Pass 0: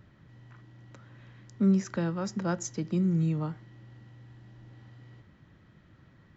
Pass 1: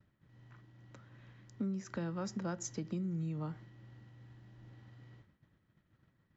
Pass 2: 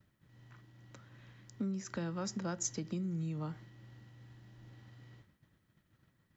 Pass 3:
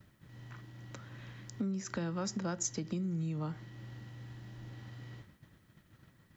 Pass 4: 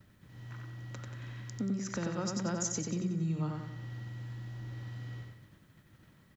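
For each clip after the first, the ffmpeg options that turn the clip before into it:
-af "acompressor=threshold=0.0251:ratio=6,agate=range=0.0224:threshold=0.00398:ratio=3:detection=peak,volume=0.708"
-af "highshelf=f=3400:g=8"
-af "acompressor=threshold=0.00178:ratio=1.5,volume=2.82"
-af "aecho=1:1:92|184|276|368|460|552:0.668|0.307|0.141|0.0651|0.0299|0.0138"

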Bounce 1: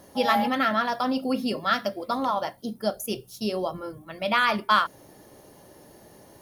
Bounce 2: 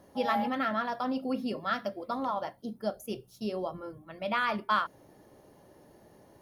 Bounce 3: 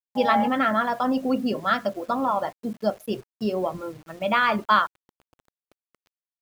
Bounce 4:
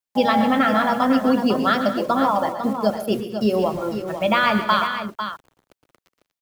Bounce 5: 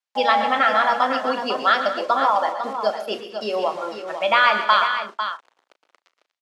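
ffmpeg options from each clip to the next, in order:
-af "highshelf=f=3000:g=-9,volume=0.531"
-af "afftdn=nr=28:nf=-47,aeval=exprs='sgn(val(0))*max(abs(val(0))-0.001,0)':c=same,acrusher=bits=9:mix=0:aa=0.000001,volume=2.66"
-filter_complex "[0:a]acrossover=split=260|3000[s0][s1][s2];[s1]acompressor=threshold=0.0708:ratio=6[s3];[s0][s3][s2]amix=inputs=3:normalize=0,aecho=1:1:119|136|187|239|499:0.237|0.178|0.119|0.168|0.355,volume=2.11"
-filter_complex "[0:a]highpass=650,lowpass=5600,asplit=2[s0][s1];[s1]adelay=36,volume=0.224[s2];[s0][s2]amix=inputs=2:normalize=0,volume=1.41"

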